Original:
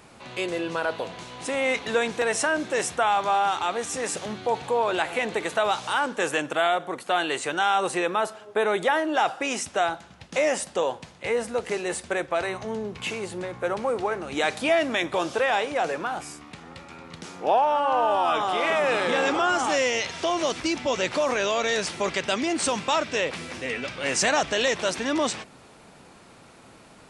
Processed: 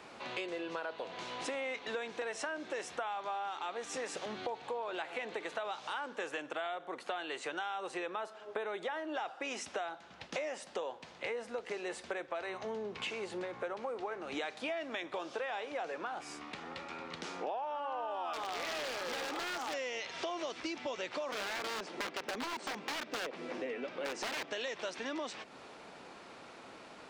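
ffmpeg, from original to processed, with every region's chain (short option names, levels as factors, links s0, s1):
-filter_complex "[0:a]asettb=1/sr,asplit=3[s0][s1][s2];[s0]atrim=end=18.334[s3];[s1]atrim=start=18.33:end=19.74,asetpts=PTS-STARTPTS,afade=t=in:d=0.004:c=qsin,afade=t=out:st=1.406:d=0.004:c=qsin,aeval=exprs='(mod(7.08*val(0)+1,2)-1)/7.08':c=same,acrusher=bits=4:mix=0:aa=0.5[s4];[s2]atrim=start=19.736[s5];[s3][s4]acrossfade=d=0.004:c1=hsin:c2=qsin[s6];[s6][s5]acrossfade=d=0.004:c1=qsin:c2=hsin,asettb=1/sr,asplit=3[s7][s8][s9];[s7]atrim=end=21.324[s10];[s8]atrim=start=21.32:end=24.51,asetpts=PTS-STARTPTS,afade=t=in:d=0.004:c=qsin,afade=t=out:st=3.186:d=0.004:c=qsin,highpass=250,tiltshelf=f=940:g=8.5,aeval=exprs='(mod(8.41*val(0)+1,2)-1)/8.41':c=same[s11];[s9]atrim=start=24.506[s12];[s10][s11]acrossfade=d=0.004:c1=hsin:c2=qsin[s13];[s13][s12]acrossfade=d=0.004:c1=qsin:c2=hsin,acrossover=split=250 6200:gain=0.224 1 0.178[s14][s15][s16];[s14][s15][s16]amix=inputs=3:normalize=0,acompressor=threshold=0.0141:ratio=6"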